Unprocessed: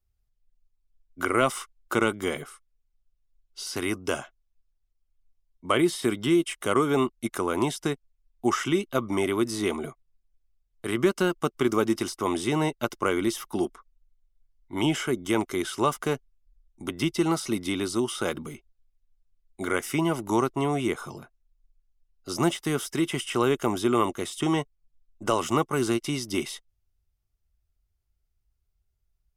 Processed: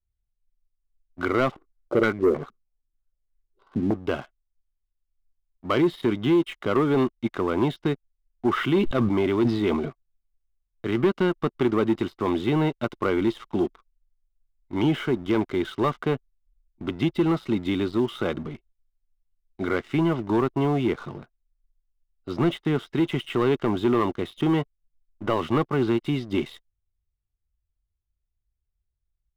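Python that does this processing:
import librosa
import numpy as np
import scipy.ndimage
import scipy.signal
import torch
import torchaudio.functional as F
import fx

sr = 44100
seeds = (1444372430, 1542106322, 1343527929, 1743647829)

y = fx.filter_held_lowpass(x, sr, hz=6.4, low_hz=220.0, high_hz=2000.0, at=(1.5, 3.93), fade=0.02)
y = fx.sustainer(y, sr, db_per_s=55.0, at=(8.56, 9.87), fade=0.02)
y = scipy.signal.sosfilt(scipy.signal.cheby1(4, 1.0, 3900.0, 'lowpass', fs=sr, output='sos'), y)
y = fx.low_shelf(y, sr, hz=460.0, db=8.0)
y = fx.leveller(y, sr, passes=2)
y = F.gain(torch.from_numpy(y), -8.0).numpy()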